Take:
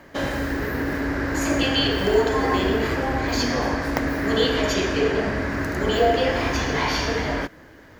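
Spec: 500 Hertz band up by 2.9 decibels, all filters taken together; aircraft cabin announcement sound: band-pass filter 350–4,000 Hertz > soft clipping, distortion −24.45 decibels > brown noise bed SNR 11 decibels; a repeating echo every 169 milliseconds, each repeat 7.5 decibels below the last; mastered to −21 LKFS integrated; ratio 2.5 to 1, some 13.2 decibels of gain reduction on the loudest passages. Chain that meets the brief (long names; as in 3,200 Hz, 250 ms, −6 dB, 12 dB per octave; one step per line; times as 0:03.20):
parametric band 500 Hz +5 dB
downward compressor 2.5 to 1, threshold −31 dBFS
band-pass filter 350–4,000 Hz
repeating echo 169 ms, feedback 42%, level −7.5 dB
soft clipping −19.5 dBFS
brown noise bed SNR 11 dB
level +10.5 dB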